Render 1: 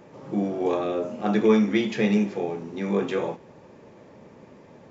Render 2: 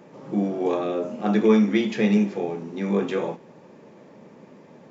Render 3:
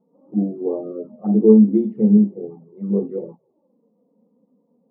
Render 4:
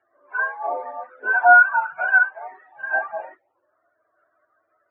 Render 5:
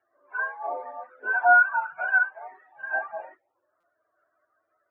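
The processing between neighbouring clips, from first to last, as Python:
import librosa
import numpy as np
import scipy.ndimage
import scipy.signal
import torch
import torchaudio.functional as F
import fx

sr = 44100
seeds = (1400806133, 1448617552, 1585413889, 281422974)

y1 = fx.low_shelf_res(x, sr, hz=120.0, db=-10.0, q=1.5)
y2 = scipy.signal.savgol_filter(y1, 65, 4, mode='constant')
y2 = fx.env_flanger(y2, sr, rest_ms=4.8, full_db=-19.5)
y2 = fx.spectral_expand(y2, sr, expansion=1.5)
y2 = F.gain(torch.from_numpy(y2), 7.0).numpy()
y3 = fx.octave_mirror(y2, sr, pivot_hz=560.0)
y4 = fx.buffer_glitch(y3, sr, at_s=(3.8,), block=256, repeats=5)
y4 = F.gain(torch.from_numpy(y4), -5.5).numpy()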